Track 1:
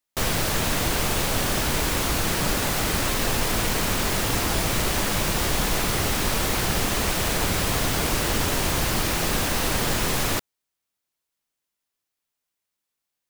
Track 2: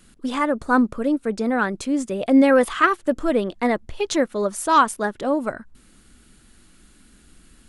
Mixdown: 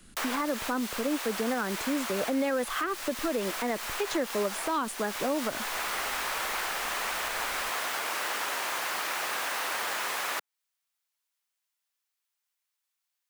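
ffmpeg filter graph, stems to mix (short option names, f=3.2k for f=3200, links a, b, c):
-filter_complex "[0:a]highpass=920,volume=-0.5dB[a];[1:a]volume=-1.5dB,asplit=2[b][c];[c]apad=whole_len=586176[d];[a][d]sidechaincompress=threshold=-26dB:ratio=3:attack=42:release=707[e];[e][b]amix=inputs=2:normalize=0,acrossover=split=190|430|2300[f][g][h][i];[f]acompressor=threshold=-45dB:ratio=4[j];[g]acompressor=threshold=-32dB:ratio=4[k];[h]acompressor=threshold=-26dB:ratio=4[l];[i]acompressor=threshold=-37dB:ratio=4[m];[j][k][l][m]amix=inputs=4:normalize=0,alimiter=limit=-20dB:level=0:latency=1:release=103"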